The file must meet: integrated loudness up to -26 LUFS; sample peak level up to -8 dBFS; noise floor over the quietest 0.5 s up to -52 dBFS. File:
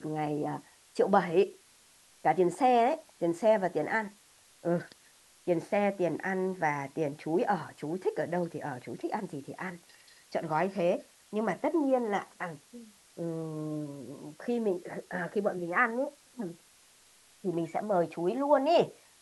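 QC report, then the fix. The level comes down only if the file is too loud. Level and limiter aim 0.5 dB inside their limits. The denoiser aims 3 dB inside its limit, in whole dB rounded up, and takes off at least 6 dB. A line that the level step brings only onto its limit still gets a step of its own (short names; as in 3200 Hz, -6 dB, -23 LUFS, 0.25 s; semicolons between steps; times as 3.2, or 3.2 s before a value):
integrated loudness -31.0 LUFS: OK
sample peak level -10.5 dBFS: OK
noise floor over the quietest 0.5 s -61 dBFS: OK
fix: none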